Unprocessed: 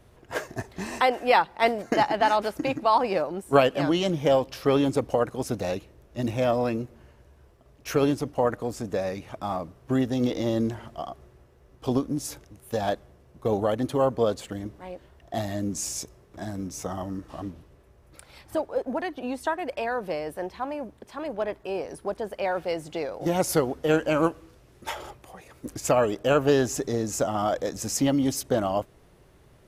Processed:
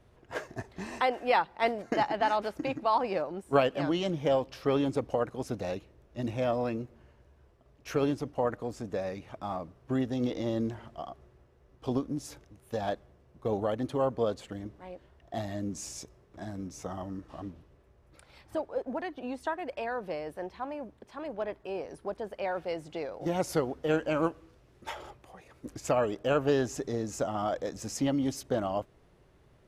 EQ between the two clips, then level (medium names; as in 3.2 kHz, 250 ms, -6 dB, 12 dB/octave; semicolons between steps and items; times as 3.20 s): treble shelf 8.7 kHz -12 dB; -5.5 dB